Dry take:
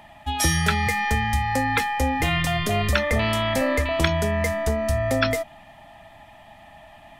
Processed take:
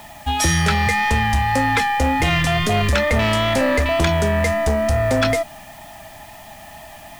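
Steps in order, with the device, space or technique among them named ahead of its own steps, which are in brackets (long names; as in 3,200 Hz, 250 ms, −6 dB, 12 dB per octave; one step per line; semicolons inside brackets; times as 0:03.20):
compact cassette (soft clipping −18.5 dBFS, distortion −14 dB; low-pass filter 9,600 Hz; tape wow and flutter 25 cents; white noise bed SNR 28 dB)
level +7 dB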